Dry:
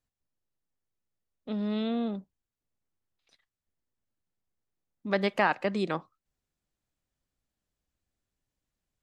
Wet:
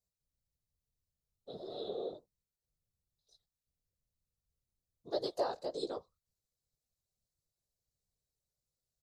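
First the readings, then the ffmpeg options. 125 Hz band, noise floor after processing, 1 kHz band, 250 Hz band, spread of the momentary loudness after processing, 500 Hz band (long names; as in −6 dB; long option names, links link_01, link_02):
−20.0 dB, below −85 dBFS, −11.5 dB, −17.0 dB, 15 LU, −6.0 dB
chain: -af "equalizer=frequency=910:width_type=o:width=0.28:gain=-2.5,flanger=delay=15.5:depth=4.4:speed=1.7,firequalizer=gain_entry='entry(130,0);entry(180,-23);entry(460,4);entry(740,-4);entry(2300,-30);entry(3900,5)':delay=0.05:min_phase=1,afftfilt=real='hypot(re,im)*cos(2*PI*random(0))':imag='hypot(re,im)*sin(2*PI*random(1))':win_size=512:overlap=0.75,volume=3.5dB"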